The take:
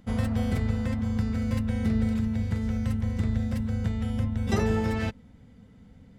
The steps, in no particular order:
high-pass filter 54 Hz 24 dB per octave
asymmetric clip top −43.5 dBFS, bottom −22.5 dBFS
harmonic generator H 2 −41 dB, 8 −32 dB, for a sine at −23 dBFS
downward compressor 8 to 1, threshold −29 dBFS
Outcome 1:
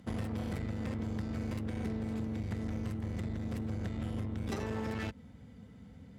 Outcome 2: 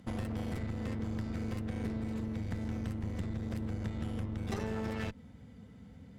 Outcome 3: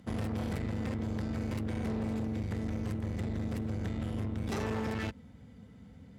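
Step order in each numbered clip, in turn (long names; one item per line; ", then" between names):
downward compressor, then harmonic generator, then asymmetric clip, then high-pass filter
downward compressor, then harmonic generator, then high-pass filter, then asymmetric clip
asymmetric clip, then downward compressor, then harmonic generator, then high-pass filter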